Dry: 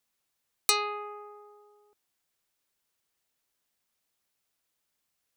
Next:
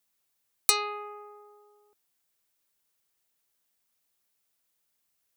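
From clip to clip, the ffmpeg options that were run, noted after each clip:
-af "highshelf=f=8700:g=7,volume=0.891"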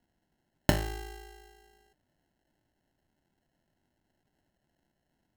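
-af "acrusher=samples=37:mix=1:aa=0.000001,equalizer=f=470:t=o:w=0.43:g=-10.5"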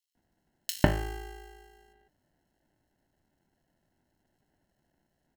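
-filter_complex "[0:a]acrossover=split=3100[s0][s1];[s0]adelay=150[s2];[s2][s1]amix=inputs=2:normalize=0,volume=1.26"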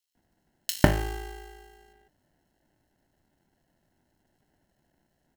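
-af "acrusher=bits=4:mode=log:mix=0:aa=0.000001,volume=1.5"

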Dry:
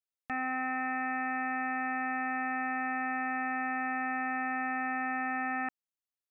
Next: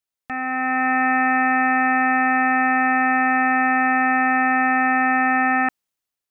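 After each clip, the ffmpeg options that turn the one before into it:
-af "dynaudnorm=f=150:g=9:m=2.82,volume=2"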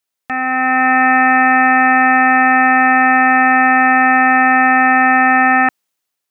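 -af "lowshelf=f=140:g=-9.5,volume=2.51"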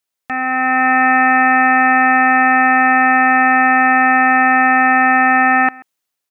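-filter_complex "[0:a]asplit=2[s0][s1];[s1]adelay=134.1,volume=0.0708,highshelf=f=4000:g=-3.02[s2];[s0][s2]amix=inputs=2:normalize=0,volume=0.891"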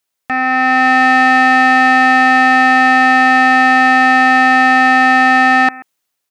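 -af "acontrast=46,volume=0.891"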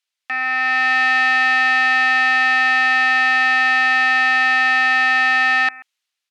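-af "bandpass=f=3100:t=q:w=0.97:csg=0"

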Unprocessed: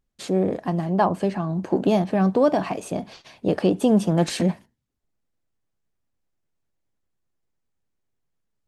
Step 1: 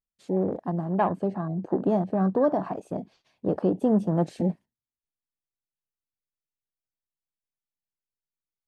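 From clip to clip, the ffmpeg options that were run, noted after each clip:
-af "afwtdn=0.0316,volume=0.631"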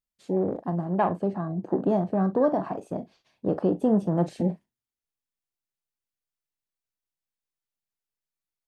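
-filter_complex "[0:a]asplit=2[s0][s1];[s1]adelay=40,volume=0.224[s2];[s0][s2]amix=inputs=2:normalize=0"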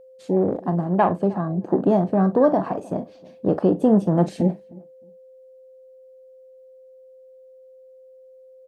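-filter_complex "[0:a]asplit=2[s0][s1];[s1]adelay=309,lowpass=f=1100:p=1,volume=0.0794,asplit=2[s2][s3];[s3]adelay=309,lowpass=f=1100:p=1,volume=0.19[s4];[s0][s2][s4]amix=inputs=3:normalize=0,aeval=exprs='val(0)+0.00282*sin(2*PI*520*n/s)':c=same,volume=1.88"

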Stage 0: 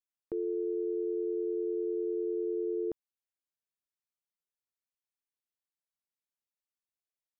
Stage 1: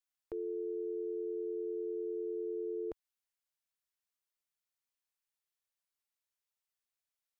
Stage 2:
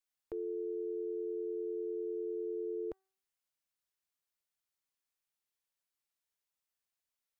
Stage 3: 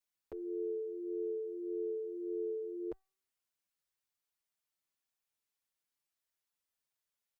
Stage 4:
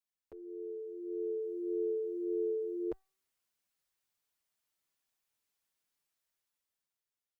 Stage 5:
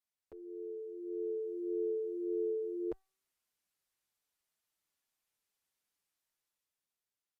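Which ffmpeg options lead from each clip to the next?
-af "equalizer=f=210:w=0.64:g=-14,volume=1.33"
-af "bandreject=f=383:t=h:w=4,bandreject=f=766:t=h:w=4,bandreject=f=1149:t=h:w=4,bandreject=f=1532:t=h:w=4,bandreject=f=1915:t=h:w=4"
-filter_complex "[0:a]asplit=2[s0][s1];[s1]adelay=6.2,afreqshift=-1.7[s2];[s0][s2]amix=inputs=2:normalize=1,volume=1.33"
-af "dynaudnorm=f=260:g=9:m=3.35,volume=0.473"
-af "aresample=32000,aresample=44100,volume=0.891"

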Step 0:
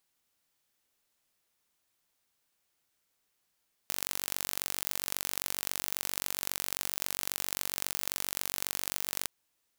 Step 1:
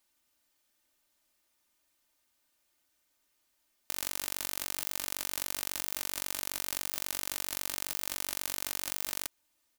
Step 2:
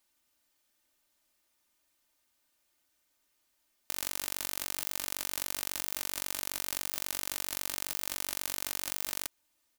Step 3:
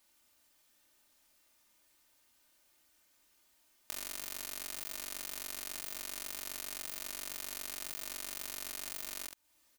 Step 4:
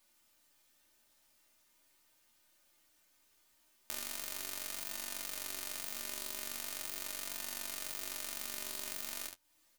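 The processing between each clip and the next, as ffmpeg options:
-filter_complex "[0:a]aecho=1:1:3.3:0.72,asplit=2[s0][s1];[s1]alimiter=limit=0.237:level=0:latency=1:release=91,volume=1.12[s2];[s0][s2]amix=inputs=2:normalize=0,volume=0.501"
-af anull
-af "acompressor=threshold=0.00708:ratio=3,aecho=1:1:26|71:0.501|0.473,volume=1.58"
-af "aeval=exprs='if(lt(val(0),0),0.708*val(0),val(0))':c=same,flanger=delay=8.8:depth=4.3:regen=37:speed=0.4:shape=sinusoidal,volume=1.68"

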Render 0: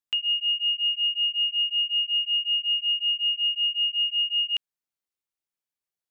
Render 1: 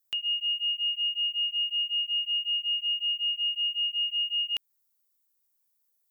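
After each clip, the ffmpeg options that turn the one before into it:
-filter_complex "[0:a]equalizer=f=2700:t=o:w=0.62:g=-6.5,asplit=2[s0][s1];[s1]alimiter=level_in=2.11:limit=0.0631:level=0:latency=1:release=177,volume=0.473,volume=1.12[s2];[s0][s2]amix=inputs=2:normalize=0,aemphasis=mode=production:type=50fm,volume=0.596"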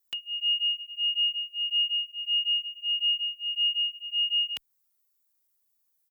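-filter_complex "[0:a]asplit=2[s0][s1];[s1]adelay=2.4,afreqshift=1.6[s2];[s0][s2]amix=inputs=2:normalize=1,volume=1.5"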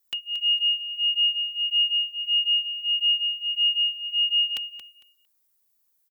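-af "aecho=1:1:227|454|681:0.282|0.0564|0.0113,volume=1.5"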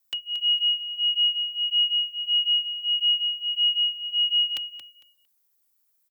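-af "afreqshift=37"

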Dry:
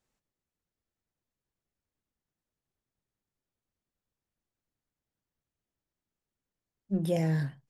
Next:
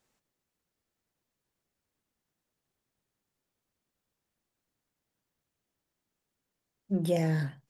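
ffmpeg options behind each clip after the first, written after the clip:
-filter_complex "[0:a]lowshelf=f=100:g=-9,asplit=2[s0][s1];[s1]acompressor=threshold=0.01:ratio=6,volume=1.06[s2];[s0][s2]amix=inputs=2:normalize=0"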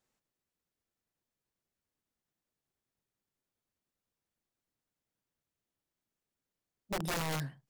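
-af "aeval=exprs='(mod(15*val(0)+1,2)-1)/15':c=same,volume=0.501"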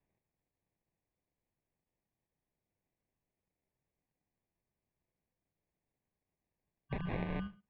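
-af "equalizer=f=670:t=o:w=1.3:g=-10,acrusher=samples=26:mix=1:aa=0.000001,highpass=f=160:t=q:w=0.5412,highpass=f=160:t=q:w=1.307,lowpass=f=3300:t=q:w=0.5176,lowpass=f=3300:t=q:w=0.7071,lowpass=f=3300:t=q:w=1.932,afreqshift=-340,volume=1.26"

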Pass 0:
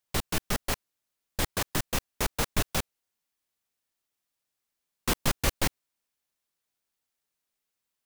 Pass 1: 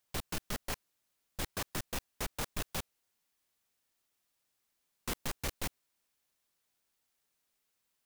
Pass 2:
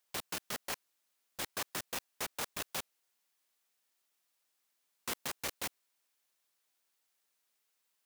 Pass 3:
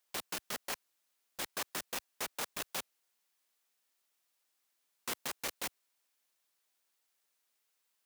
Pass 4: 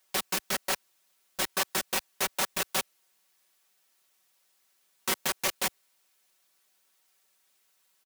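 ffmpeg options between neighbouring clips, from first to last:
-af "asoftclip=type=tanh:threshold=0.0398,alimiter=level_in=3.55:limit=0.0631:level=0:latency=1:release=11,volume=0.282,volume=1.5"
-af "highpass=f=470:p=1,volume=1.12"
-af "equalizer=f=89:w=1.4:g=-10.5"
-af "aecho=1:1:5.3:0.7,volume=2.51"

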